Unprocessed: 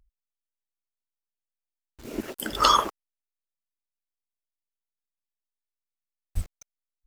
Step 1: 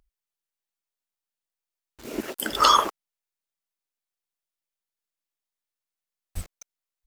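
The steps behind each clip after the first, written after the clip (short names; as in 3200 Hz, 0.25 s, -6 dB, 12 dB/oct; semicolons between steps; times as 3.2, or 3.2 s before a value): low shelf 190 Hz -10 dB; in parallel at -2 dB: limiter -14 dBFS, peak gain reduction 11 dB; on the sum: gain -1 dB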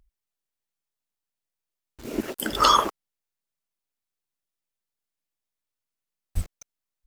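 low shelf 300 Hz +8 dB; gain -1 dB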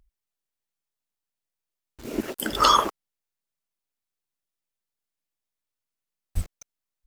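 nothing audible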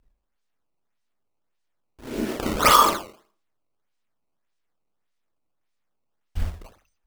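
Schroeder reverb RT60 0.48 s, combs from 26 ms, DRR -4 dB; decimation with a swept rate 15×, swing 160% 1.7 Hz; gain -2.5 dB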